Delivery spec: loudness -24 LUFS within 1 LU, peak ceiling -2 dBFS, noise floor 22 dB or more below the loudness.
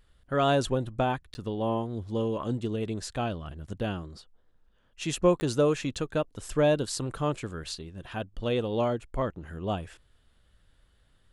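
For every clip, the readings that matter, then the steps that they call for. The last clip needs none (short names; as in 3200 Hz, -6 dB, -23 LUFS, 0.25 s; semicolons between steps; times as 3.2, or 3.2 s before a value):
dropouts 2; longest dropout 10 ms; loudness -30.0 LUFS; peak -10.5 dBFS; loudness target -24.0 LUFS
-> interpolate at 1.34/5.4, 10 ms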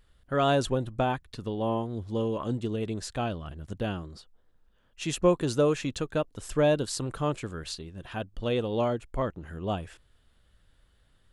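dropouts 0; loudness -30.0 LUFS; peak -10.5 dBFS; loudness target -24.0 LUFS
-> gain +6 dB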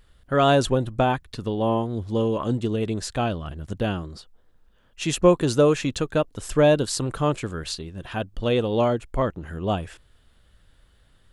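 loudness -24.0 LUFS; peak -4.5 dBFS; noise floor -59 dBFS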